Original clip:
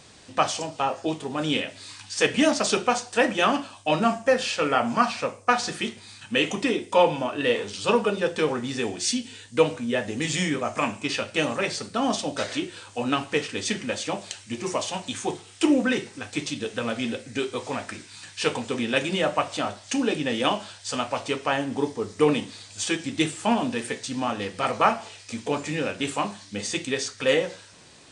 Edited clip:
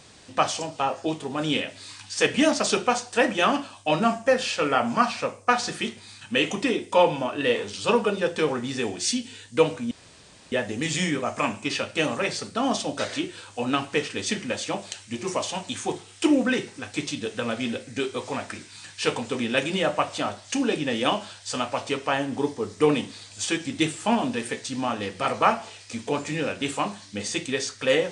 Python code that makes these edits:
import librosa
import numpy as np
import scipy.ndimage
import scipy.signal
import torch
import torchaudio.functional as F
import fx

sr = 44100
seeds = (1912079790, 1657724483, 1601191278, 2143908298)

y = fx.edit(x, sr, fx.insert_room_tone(at_s=9.91, length_s=0.61), tone=tone)